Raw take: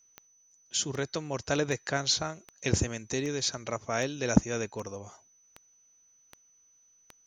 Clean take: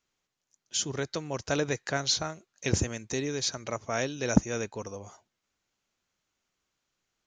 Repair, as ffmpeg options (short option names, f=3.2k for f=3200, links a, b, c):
-af "adeclick=t=4,bandreject=f=6k:w=30"